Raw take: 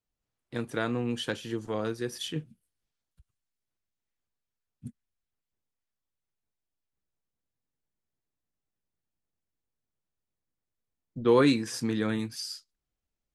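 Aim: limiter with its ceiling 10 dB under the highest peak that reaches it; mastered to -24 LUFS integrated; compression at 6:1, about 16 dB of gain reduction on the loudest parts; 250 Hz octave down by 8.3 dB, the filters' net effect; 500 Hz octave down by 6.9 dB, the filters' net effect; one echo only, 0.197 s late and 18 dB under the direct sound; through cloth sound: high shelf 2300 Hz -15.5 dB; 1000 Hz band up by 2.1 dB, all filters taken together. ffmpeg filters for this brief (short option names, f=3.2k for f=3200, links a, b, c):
-af "equalizer=f=250:t=o:g=-8.5,equalizer=f=500:t=o:g=-6,equalizer=f=1k:t=o:g=7.5,acompressor=threshold=-36dB:ratio=6,alimiter=level_in=6dB:limit=-24dB:level=0:latency=1,volume=-6dB,highshelf=f=2.3k:g=-15.5,aecho=1:1:197:0.126,volume=22dB"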